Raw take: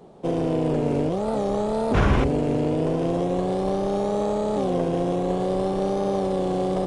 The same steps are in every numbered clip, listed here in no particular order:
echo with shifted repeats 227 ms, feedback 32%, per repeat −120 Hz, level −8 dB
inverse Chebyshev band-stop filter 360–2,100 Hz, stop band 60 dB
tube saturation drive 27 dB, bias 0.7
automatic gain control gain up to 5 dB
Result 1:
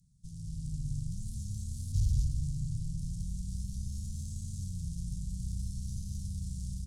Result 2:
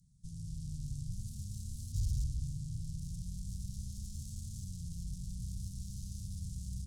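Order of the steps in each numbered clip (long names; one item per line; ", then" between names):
tube saturation, then automatic gain control, then echo with shifted repeats, then inverse Chebyshev band-stop filter
automatic gain control, then echo with shifted repeats, then tube saturation, then inverse Chebyshev band-stop filter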